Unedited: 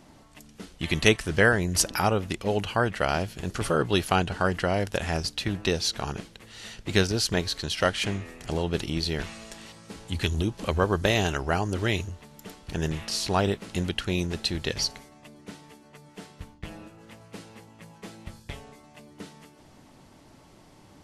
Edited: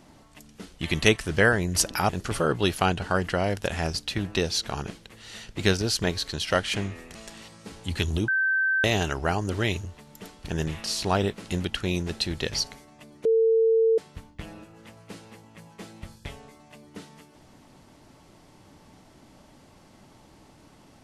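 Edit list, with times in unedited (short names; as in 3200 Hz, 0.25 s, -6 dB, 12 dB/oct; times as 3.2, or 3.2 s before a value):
2.09–3.39 cut
8.45–9.39 cut
10.52–11.08 bleep 1550 Hz -20.5 dBFS
15.49–16.22 bleep 450 Hz -17 dBFS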